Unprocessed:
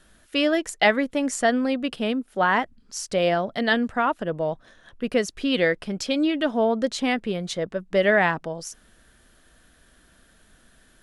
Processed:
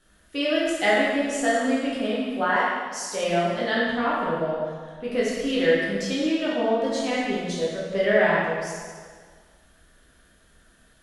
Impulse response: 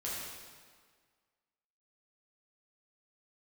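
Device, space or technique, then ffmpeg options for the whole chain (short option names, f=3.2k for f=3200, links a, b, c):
stairwell: -filter_complex "[1:a]atrim=start_sample=2205[a];[0:a][a]afir=irnorm=-1:irlink=0,asettb=1/sr,asplit=3[b][c][d];[b]atrim=end=2.564[e];[c]atrim=start=2.56:end=3.24,asetpts=PTS-STARTPTS,afade=t=in:d=0.004:c=qsin,afade=t=out:st=0.676:d=0.004:c=qsin,bass=f=250:g=-10,treble=f=4k:g=3[f];[d]atrim=start=3.236[g];[e][f]acrossfade=d=0.004:c1=hsin:c2=qsin[h];[h][g]acrossfade=d=0.004:c1=qsin:c2=hsin,volume=-3.5dB"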